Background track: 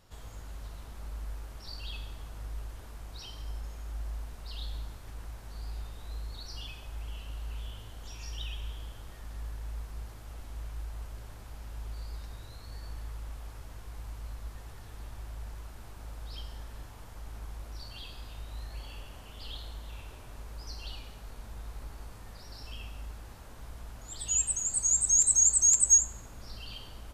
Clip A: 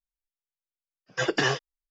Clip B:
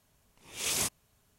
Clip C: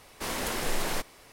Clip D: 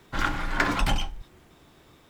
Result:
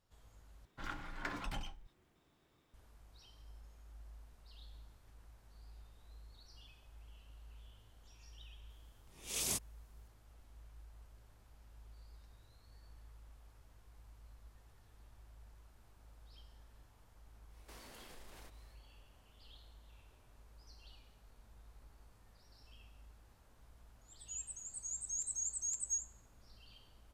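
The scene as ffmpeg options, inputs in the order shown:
-filter_complex "[0:a]volume=-17dB[a];[2:a]equalizer=f=1.6k:t=o:w=2.4:g=-6[b];[3:a]acompressor=threshold=-36dB:ratio=6:attack=3.2:release=140:knee=1:detection=peak[c];[a]asplit=2[d][e];[d]atrim=end=0.654[f];[4:a]atrim=end=2.09,asetpts=PTS-STARTPTS,volume=-18dB[g];[e]atrim=start=2.736[h];[b]atrim=end=1.38,asetpts=PTS-STARTPTS,volume=-5dB,afade=t=in:d=0.004:c=hsin,afade=t=out:st=1.376:d=0.004:c=hsin,adelay=8700[i];[c]atrim=end=1.32,asetpts=PTS-STARTPTS,volume=-16.5dB,afade=t=in:d=0.1,afade=t=out:st=1.22:d=0.1,adelay=770868S[j];[f][g]acrossfade=d=0.004:c1=hsin:c2=hsin[k];[k][h]acrossfade=d=0.004:c1=hsin:c2=hsin[l];[l][i][j]amix=inputs=3:normalize=0"

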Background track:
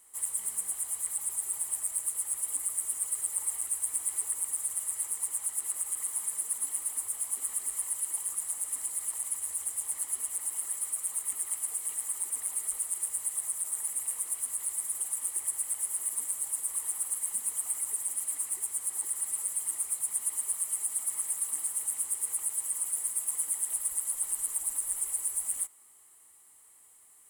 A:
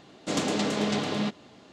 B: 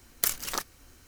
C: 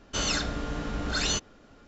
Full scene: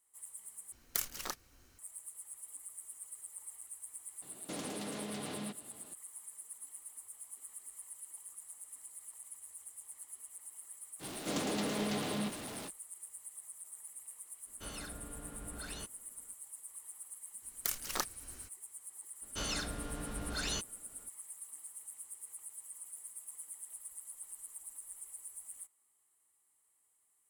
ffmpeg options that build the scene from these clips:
-filter_complex "[2:a]asplit=2[a][b];[1:a]asplit=2[c][d];[3:a]asplit=2[e][f];[0:a]volume=-16.5dB[g];[c]acompressor=threshold=-31dB:ratio=6:attack=3.2:release=140:knee=1:detection=peak[h];[d]aeval=exprs='val(0)+0.5*0.0335*sgn(val(0))':c=same[i];[e]lowpass=f=2.7k:p=1[j];[b]dynaudnorm=f=150:g=3:m=13dB[k];[g]asplit=2[l][m];[l]atrim=end=0.724[n];[a]atrim=end=1.07,asetpts=PTS-STARTPTS,volume=-8.5dB[o];[m]atrim=start=1.786[p];[h]atrim=end=1.72,asetpts=PTS-STARTPTS,volume=-7dB,afade=t=in:d=0.004:c=hsin,afade=t=out:st=1.716:d=0.004:c=hsin,adelay=4220[q];[i]atrim=end=1.72,asetpts=PTS-STARTPTS,volume=-10.5dB,afade=t=in:d=0.05,afade=t=out:st=1.67:d=0.05,adelay=10990[r];[j]atrim=end=1.87,asetpts=PTS-STARTPTS,volume=-16dB,afade=t=in:d=0.004:c=hsin,afade=t=out:st=1.866:d=0.004:c=hsin,adelay=14470[s];[k]atrim=end=1.07,asetpts=PTS-STARTPTS,volume=-12dB,afade=t=in:d=0.004:c=hsin,afade=t=out:st=1.066:d=0.004:c=hsin,adelay=17420[t];[f]atrim=end=1.87,asetpts=PTS-STARTPTS,volume=-9.5dB,afade=t=in:d=0.004:c=hsin,afade=t=out:st=1.866:d=0.004:c=hsin,adelay=19220[u];[n][o]acrossfade=d=0.004:c1=hsin:c2=hsin[v];[v][p]acrossfade=d=0.004:c1=hsin:c2=hsin[w];[w][q][r][s][t][u]amix=inputs=6:normalize=0"

